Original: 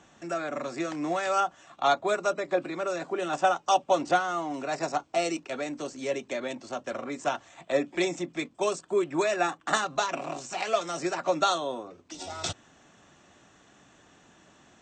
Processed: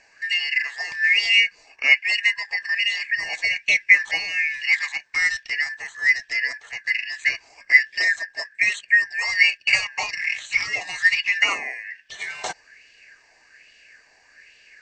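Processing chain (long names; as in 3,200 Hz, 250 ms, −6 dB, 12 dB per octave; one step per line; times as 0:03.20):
band-splitting scrambler in four parts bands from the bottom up 3142
dynamic equaliser 5,200 Hz, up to +4 dB, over −42 dBFS, Q 1.2
in parallel at −3 dB: brickwall limiter −19 dBFS, peak gain reduction 10 dB
on the sum: auto-filter bell 1.2 Hz 800–3,200 Hz +15 dB
level −5.5 dB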